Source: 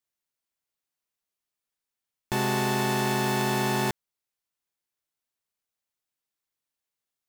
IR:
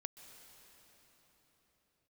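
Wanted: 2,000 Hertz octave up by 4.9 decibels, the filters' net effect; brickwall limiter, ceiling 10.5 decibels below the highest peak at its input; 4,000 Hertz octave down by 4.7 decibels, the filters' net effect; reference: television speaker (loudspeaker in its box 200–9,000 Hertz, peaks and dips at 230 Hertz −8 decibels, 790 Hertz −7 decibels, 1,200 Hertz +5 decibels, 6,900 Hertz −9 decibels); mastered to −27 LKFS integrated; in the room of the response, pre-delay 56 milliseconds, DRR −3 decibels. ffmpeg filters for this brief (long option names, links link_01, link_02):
-filter_complex "[0:a]equalizer=frequency=2000:width_type=o:gain=7.5,equalizer=frequency=4000:width_type=o:gain=-8,alimiter=limit=-22.5dB:level=0:latency=1,asplit=2[link_01][link_02];[1:a]atrim=start_sample=2205,adelay=56[link_03];[link_02][link_03]afir=irnorm=-1:irlink=0,volume=7dB[link_04];[link_01][link_04]amix=inputs=2:normalize=0,highpass=frequency=200:width=0.5412,highpass=frequency=200:width=1.3066,equalizer=frequency=230:width_type=q:width=4:gain=-8,equalizer=frequency=790:width_type=q:width=4:gain=-7,equalizer=frequency=1200:width_type=q:width=4:gain=5,equalizer=frequency=6900:width_type=q:width=4:gain=-9,lowpass=frequency=9000:width=0.5412,lowpass=frequency=9000:width=1.3066,volume=3.5dB"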